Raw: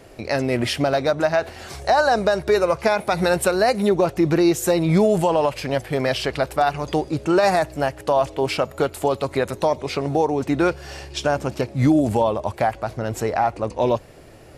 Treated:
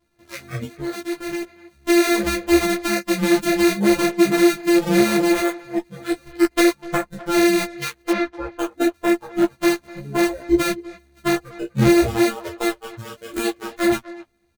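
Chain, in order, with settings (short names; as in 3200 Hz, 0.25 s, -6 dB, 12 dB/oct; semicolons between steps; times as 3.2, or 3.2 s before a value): sample sorter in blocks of 128 samples; spectral noise reduction 26 dB; limiter -14.5 dBFS, peak gain reduction 7.5 dB; 0.8–1.44 level quantiser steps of 16 dB; 6.43–7.26 transient shaper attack +7 dB, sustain -7 dB; 8.1–8.59 air absorption 230 m; doubler 15 ms -4 dB; speakerphone echo 0.25 s, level -17 dB; ensemble effect; gain +5.5 dB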